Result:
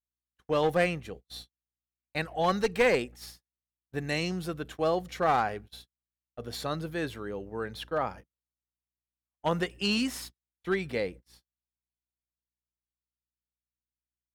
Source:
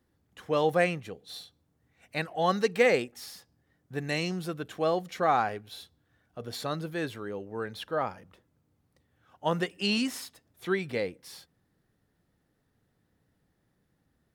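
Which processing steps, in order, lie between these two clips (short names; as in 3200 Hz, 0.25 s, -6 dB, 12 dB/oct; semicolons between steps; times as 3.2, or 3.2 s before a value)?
one-sided clip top -22.5 dBFS; buzz 60 Hz, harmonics 6, -53 dBFS -8 dB/oct; gate -43 dBFS, range -47 dB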